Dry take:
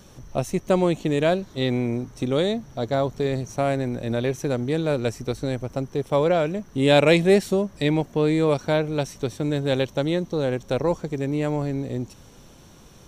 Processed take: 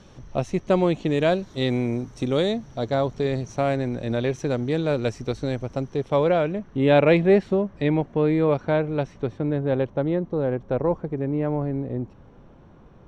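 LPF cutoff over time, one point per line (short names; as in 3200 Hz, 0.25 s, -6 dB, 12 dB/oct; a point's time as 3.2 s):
0.98 s 4500 Hz
1.7 s 10000 Hz
3.06 s 5500 Hz
5.83 s 5500 Hz
6.89 s 2200 Hz
9.12 s 2200 Hz
9.68 s 1400 Hz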